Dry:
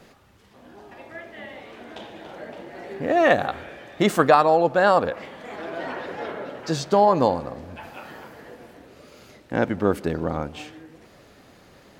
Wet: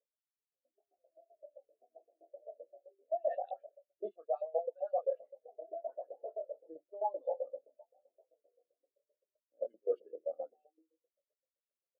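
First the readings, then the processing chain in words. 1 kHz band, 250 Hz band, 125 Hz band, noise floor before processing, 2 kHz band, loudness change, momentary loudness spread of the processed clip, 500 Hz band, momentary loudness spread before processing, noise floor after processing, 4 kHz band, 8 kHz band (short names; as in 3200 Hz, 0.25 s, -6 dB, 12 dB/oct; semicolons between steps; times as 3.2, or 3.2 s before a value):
-21.0 dB, -35.5 dB, under -40 dB, -52 dBFS, under -40 dB, -18.0 dB, 19 LU, -15.0 dB, 22 LU, under -85 dBFS, under -40 dB, under -35 dB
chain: band shelf 1400 Hz -15 dB; doubler 25 ms -3.5 dB; echo 77 ms -20.5 dB; LFO band-pass saw up 7.7 Hz 530–2900 Hz; HPF 230 Hz 12 dB/oct; low-pass opened by the level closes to 580 Hz, open at -24.5 dBFS; reverse; compressor 8:1, threshold -39 dBFS, peak gain reduction 22 dB; reverse; high shelf 3900 Hz +10.5 dB; notches 60/120/180/240/300/360 Hz; spectral expander 2.5:1; gain +7.5 dB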